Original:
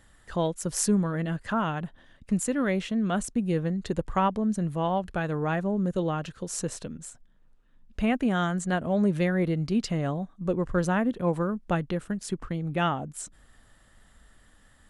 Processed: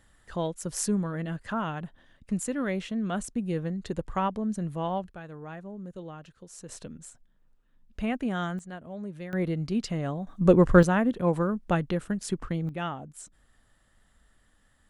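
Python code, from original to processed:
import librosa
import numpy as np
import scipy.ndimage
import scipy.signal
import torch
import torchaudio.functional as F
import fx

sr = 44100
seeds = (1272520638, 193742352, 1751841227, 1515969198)

y = fx.gain(x, sr, db=fx.steps((0.0, -3.5), (5.08, -13.5), (6.69, -4.5), (8.59, -14.0), (9.33, -2.5), (10.27, 9.0), (10.83, 1.0), (12.69, -7.0)))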